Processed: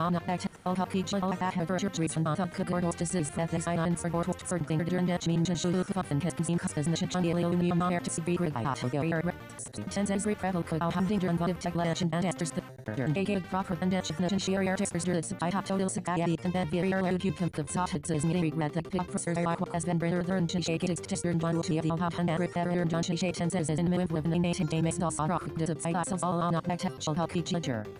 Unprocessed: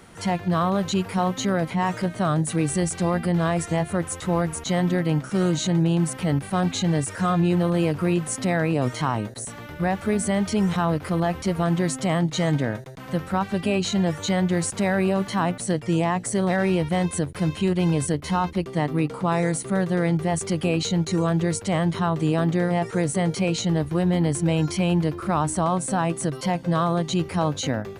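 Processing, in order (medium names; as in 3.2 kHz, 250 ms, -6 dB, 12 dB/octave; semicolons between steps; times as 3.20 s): slices played last to first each 94 ms, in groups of 7; trim -6.5 dB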